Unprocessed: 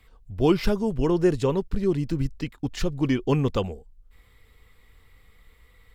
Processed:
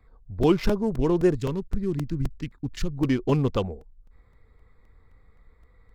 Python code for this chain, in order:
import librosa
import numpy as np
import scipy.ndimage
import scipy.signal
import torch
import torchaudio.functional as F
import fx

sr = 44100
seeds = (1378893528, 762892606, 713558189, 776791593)

y = fx.wiener(x, sr, points=15)
y = fx.peak_eq(y, sr, hz=650.0, db=-11.5, octaves=1.6, at=(1.35, 2.97))
y = fx.buffer_crackle(y, sr, first_s=0.43, period_s=0.26, block=128, kind='repeat')